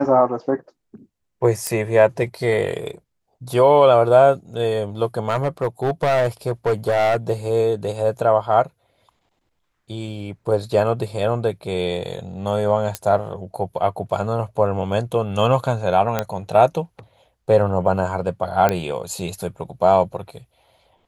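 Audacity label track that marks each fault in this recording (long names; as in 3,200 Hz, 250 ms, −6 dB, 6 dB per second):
1.670000	1.670000	click −7 dBFS
5.290000	7.170000	clipping −14 dBFS
12.950000	12.950000	click −8 dBFS
16.190000	16.190000	click −6 dBFS
18.690000	18.690000	click −5 dBFS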